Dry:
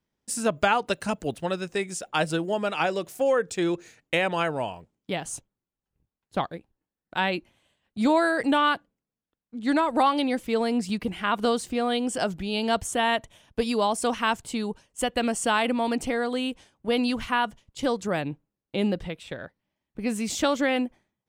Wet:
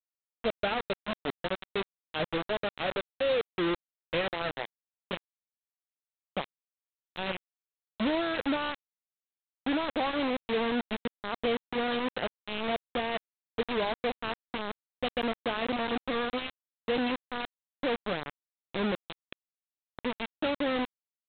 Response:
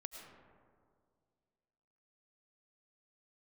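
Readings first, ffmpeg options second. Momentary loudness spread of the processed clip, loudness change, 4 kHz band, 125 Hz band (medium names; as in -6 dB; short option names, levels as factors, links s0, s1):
11 LU, -6.0 dB, -4.0 dB, -8.0 dB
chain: -af "equalizer=f=500:t=o:w=1:g=4,equalizer=f=1000:t=o:w=1:g=-5,equalizer=f=2000:t=o:w=1:g=-6,aresample=8000,acrusher=bits=3:mix=0:aa=0.000001,aresample=44100,volume=0.422"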